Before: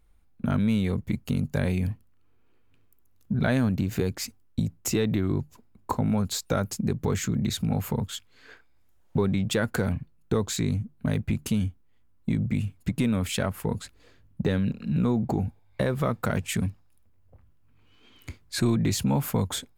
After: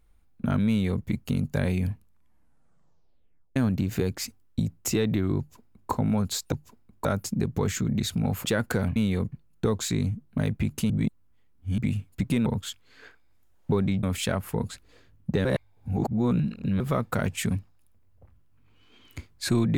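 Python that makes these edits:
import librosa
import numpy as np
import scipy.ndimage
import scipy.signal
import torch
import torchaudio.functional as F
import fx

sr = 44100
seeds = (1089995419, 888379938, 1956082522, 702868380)

y = fx.edit(x, sr, fx.duplicate(start_s=0.69, length_s=0.36, to_s=10.0),
    fx.tape_stop(start_s=1.86, length_s=1.7),
    fx.duplicate(start_s=5.38, length_s=0.53, to_s=6.52),
    fx.move(start_s=7.92, length_s=1.57, to_s=13.14),
    fx.reverse_span(start_s=11.58, length_s=0.88),
    fx.reverse_span(start_s=14.56, length_s=1.35), tone=tone)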